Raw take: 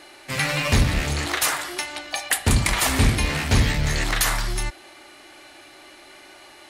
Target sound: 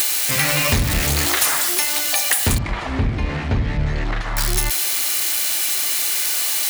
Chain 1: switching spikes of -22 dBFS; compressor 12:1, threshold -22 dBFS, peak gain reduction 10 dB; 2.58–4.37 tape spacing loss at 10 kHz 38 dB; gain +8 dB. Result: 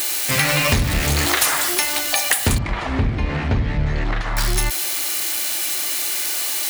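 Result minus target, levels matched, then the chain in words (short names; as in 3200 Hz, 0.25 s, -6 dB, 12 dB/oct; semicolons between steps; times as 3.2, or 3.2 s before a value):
switching spikes: distortion -6 dB
switching spikes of -16 dBFS; compressor 12:1, threshold -22 dBFS, peak gain reduction 10 dB; 2.58–4.37 tape spacing loss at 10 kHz 38 dB; gain +8 dB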